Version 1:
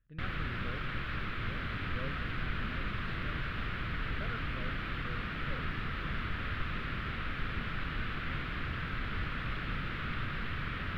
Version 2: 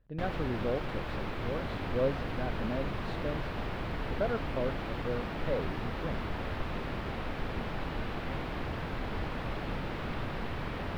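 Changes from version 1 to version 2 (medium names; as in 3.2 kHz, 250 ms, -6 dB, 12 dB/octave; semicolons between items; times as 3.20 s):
speech +7.5 dB; master: add FFT filter 140 Hz 0 dB, 870 Hz +14 dB, 1.3 kHz -5 dB, 3.5 kHz -2 dB, 5.9 kHz +8 dB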